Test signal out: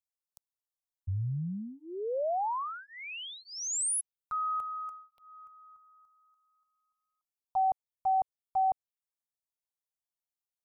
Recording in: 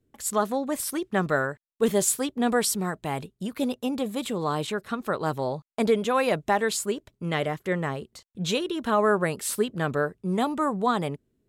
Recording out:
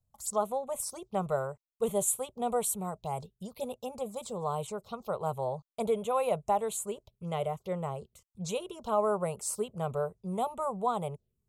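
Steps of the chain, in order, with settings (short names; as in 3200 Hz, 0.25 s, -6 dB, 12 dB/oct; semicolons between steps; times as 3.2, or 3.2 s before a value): envelope phaser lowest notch 390 Hz, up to 5000 Hz, full sweep at -24.5 dBFS; fixed phaser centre 710 Hz, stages 4; gain -2.5 dB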